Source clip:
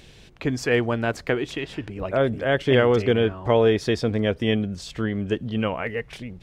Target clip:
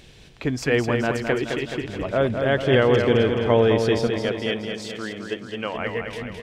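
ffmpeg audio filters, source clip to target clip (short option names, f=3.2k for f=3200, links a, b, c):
-filter_complex "[0:a]asettb=1/sr,asplit=3[a][b][c];[a]atrim=end=4.074[d];[b]atrim=start=4.07:end=5.75,asetpts=PTS-STARTPTS,afade=t=in:d=0.004:c=qsin,afade=t=out:st=1.676:d=0.004:c=qsin,highpass=f=580:p=1[e];[c]atrim=start=5.746[f];[d][e]acrossfade=d=0.004:c1=hsin:c2=qsin[g];[g][f]acrossfade=d=0.004:c1=qsin:c2=hsin,asplit=2[h][i];[i]aecho=0:1:213|426|639|852|1065|1278|1491|1704:0.501|0.291|0.169|0.0978|0.0567|0.0329|0.0191|0.0111[j];[h][j]amix=inputs=2:normalize=0"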